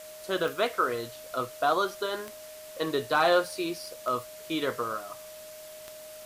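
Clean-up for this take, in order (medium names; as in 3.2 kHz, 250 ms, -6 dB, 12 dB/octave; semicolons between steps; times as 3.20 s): clip repair -14.5 dBFS; de-click; band-stop 620 Hz, Q 30; noise reduction 28 dB, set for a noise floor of -45 dBFS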